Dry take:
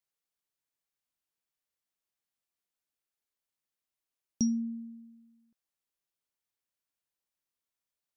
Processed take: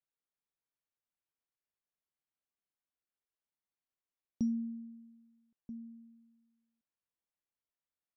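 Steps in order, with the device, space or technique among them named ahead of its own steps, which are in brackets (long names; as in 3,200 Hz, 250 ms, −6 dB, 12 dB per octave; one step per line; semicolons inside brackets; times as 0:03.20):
shout across a valley (high-frequency loss of the air 350 metres; slap from a distant wall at 220 metres, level −13 dB)
level −3.5 dB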